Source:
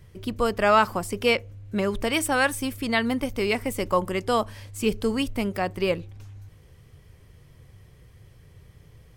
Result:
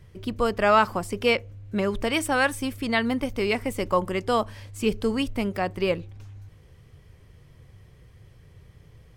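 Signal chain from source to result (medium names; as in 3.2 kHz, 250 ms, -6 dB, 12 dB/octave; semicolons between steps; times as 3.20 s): treble shelf 8 kHz -7 dB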